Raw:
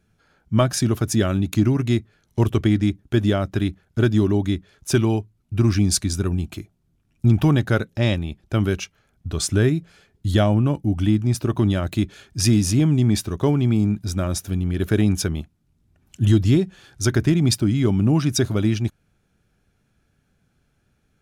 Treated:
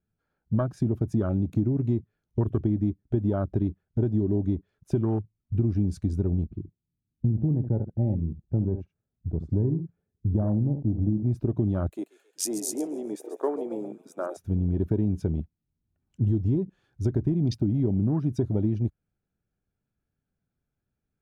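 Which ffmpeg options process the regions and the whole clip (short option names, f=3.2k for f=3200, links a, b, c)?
-filter_complex "[0:a]asettb=1/sr,asplit=3[a][b][c];[a]atrim=end=6.444[d];[b]atrim=start=6.44:end=11.23,asetpts=PTS-STARTPTS,afade=t=in:d=0.004:c=qsin,afade=t=out:st=4.786:d=0.004:c=qsin,bandpass=f=140:t=q:w=0.52,aecho=1:1:71:0.299,atrim=end_sample=211239[e];[c]atrim=start=11.226[f];[d][e]acrossfade=d=0.004:c1=hsin:c2=qsin[g];[g][f]acrossfade=d=0.004:c1=qsin:c2=hsin,asettb=1/sr,asplit=3[h][i][j];[h]atrim=end=11.894[k];[i]atrim=start=11.89:end=14.37,asetpts=PTS-STARTPTS,afade=t=in:d=0.004:c=qsin,afade=t=out:st=2.476:d=0.004:c=qsin,highpass=f=390:w=0.5412,highpass=f=390:w=1.3066,highshelf=f=6k:t=q:w=1.5:g=8,asplit=7[l][m][n][o][p][q][r];[m]adelay=135,afreqshift=53,volume=-10.5dB[s];[n]adelay=270,afreqshift=106,volume=-16dB[t];[o]adelay=405,afreqshift=159,volume=-21.5dB[u];[p]adelay=540,afreqshift=212,volume=-27dB[v];[q]adelay=675,afreqshift=265,volume=-32.6dB[w];[r]adelay=810,afreqshift=318,volume=-38.1dB[x];[l][s][t][u][v][w][x]amix=inputs=7:normalize=0,atrim=end_sample=109368[y];[j]atrim=start=14.366[z];[k][y]acrossfade=d=0.004:c1=hsin:c2=qsin[aa];[aa][z]acrossfade=d=0.004:c1=qsin:c2=hsin,afwtdn=0.0447,highshelf=f=2.1k:g=-12,acompressor=threshold=-21dB:ratio=6"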